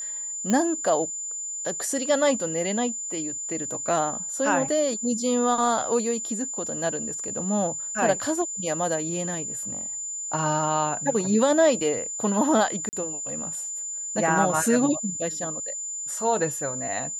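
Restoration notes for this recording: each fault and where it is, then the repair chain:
tone 7100 Hz -30 dBFS
0.5 pop -12 dBFS
12.89–12.93 gap 39 ms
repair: de-click; notch 7100 Hz, Q 30; interpolate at 12.89, 39 ms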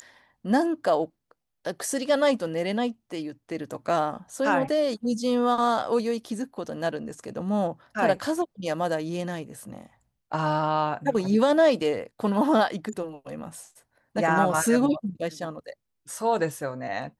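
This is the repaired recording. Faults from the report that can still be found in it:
none

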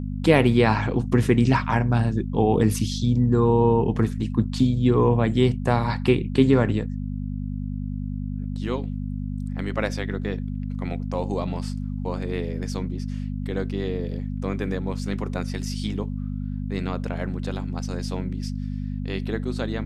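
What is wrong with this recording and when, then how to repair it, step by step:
hum 50 Hz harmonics 5 -29 dBFS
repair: de-hum 50 Hz, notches 5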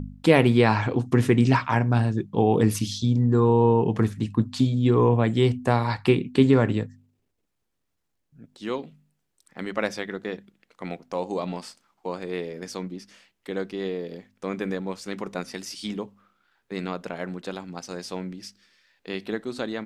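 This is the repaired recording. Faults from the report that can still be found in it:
none

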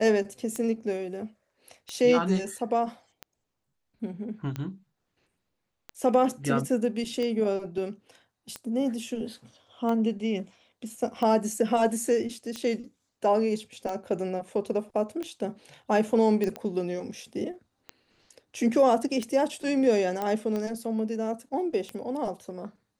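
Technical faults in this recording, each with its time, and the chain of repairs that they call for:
tick 45 rpm -20 dBFS
16.44 pop -17 dBFS
20.22 pop -17 dBFS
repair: de-click

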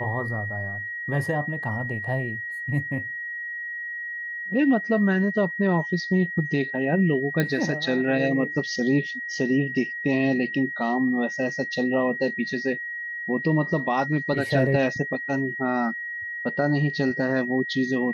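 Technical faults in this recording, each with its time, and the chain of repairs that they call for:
tone 1900 Hz -30 dBFS
7.4 pop -10 dBFS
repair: de-click; notch 1900 Hz, Q 30

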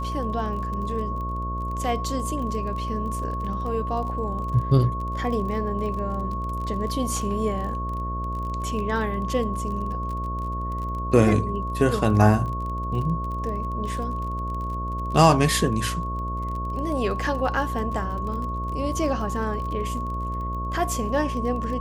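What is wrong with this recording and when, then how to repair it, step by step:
buzz 60 Hz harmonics 11 -30 dBFS
crackle 30/s -32 dBFS
tone 1100 Hz -30 dBFS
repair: de-click; de-hum 60 Hz, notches 11; notch 1100 Hz, Q 30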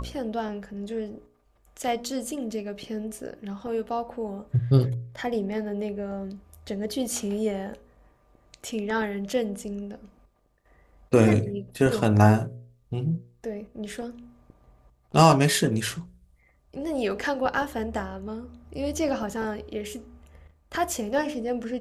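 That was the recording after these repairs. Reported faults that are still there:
none

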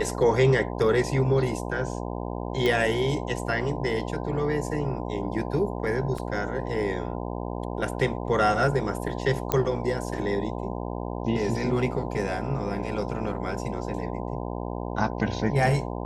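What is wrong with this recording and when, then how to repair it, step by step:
buzz 60 Hz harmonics 17 -32 dBFS
2.66 pop -13 dBFS
6.18 gap 3.8 ms
9.52 pop -8 dBFS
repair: de-click; de-hum 60 Hz, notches 17; interpolate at 6.18, 3.8 ms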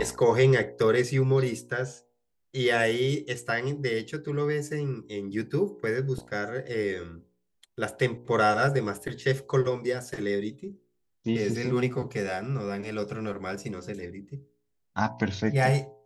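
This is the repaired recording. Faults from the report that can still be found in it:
none

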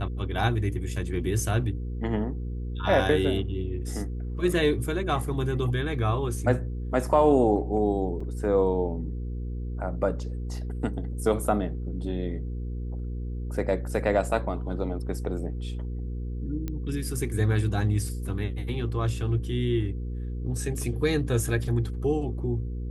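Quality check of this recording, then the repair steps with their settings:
hum 60 Hz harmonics 8 -32 dBFS
8.2 gap 4.4 ms
16.68 pop -19 dBFS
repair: de-click; de-hum 60 Hz, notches 8; interpolate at 8.2, 4.4 ms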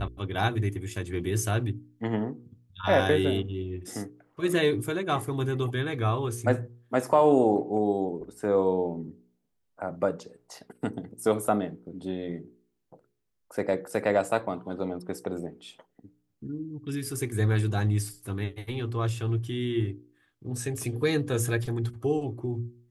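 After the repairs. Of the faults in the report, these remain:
none

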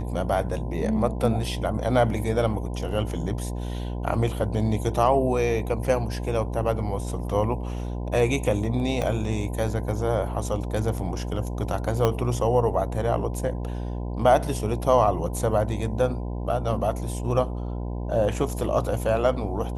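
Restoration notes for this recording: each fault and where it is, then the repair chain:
buzz 60 Hz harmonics 17 -30 dBFS
9.02 gap 2.6 ms
12.05 pop -9 dBFS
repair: de-click; de-hum 60 Hz, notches 17; interpolate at 9.02, 2.6 ms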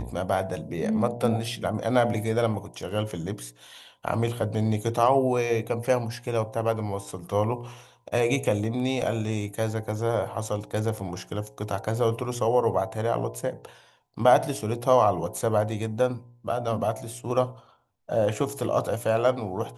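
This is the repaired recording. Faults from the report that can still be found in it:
12.05 pop

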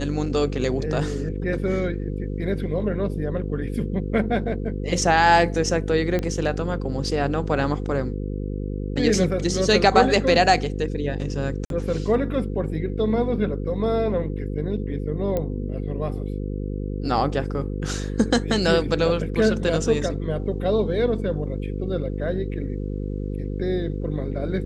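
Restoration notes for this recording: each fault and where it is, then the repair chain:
buzz 50 Hz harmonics 10 -28 dBFS
6.19 pop -13 dBFS
11.65–11.7 gap 52 ms
15.37 pop -13 dBFS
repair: de-click; de-hum 50 Hz, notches 10; interpolate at 11.65, 52 ms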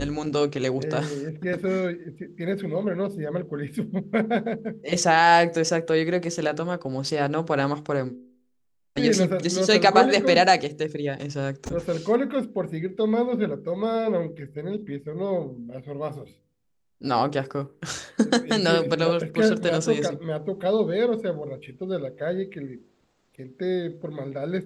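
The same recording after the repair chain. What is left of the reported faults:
none

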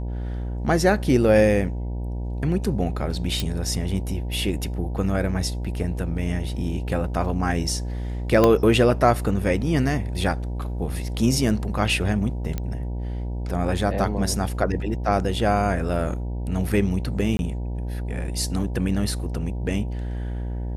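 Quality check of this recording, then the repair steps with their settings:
buzz 60 Hz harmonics 16 -28 dBFS
3.4 pop
8.44 pop -5 dBFS
12.58 pop -14 dBFS
17.37–17.39 gap 21 ms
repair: de-click; de-hum 60 Hz, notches 16; interpolate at 17.37, 21 ms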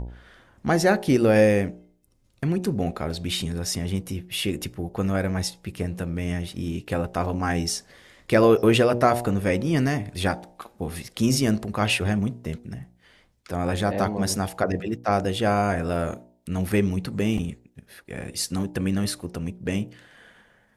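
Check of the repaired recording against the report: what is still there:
8.44 pop

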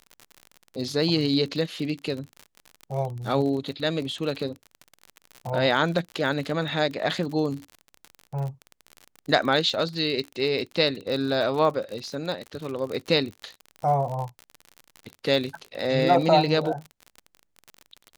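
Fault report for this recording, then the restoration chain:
crackle 49/s -31 dBFS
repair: de-click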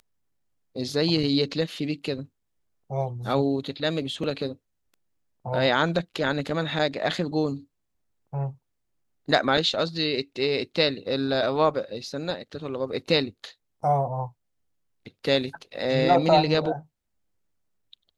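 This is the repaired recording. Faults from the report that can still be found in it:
none

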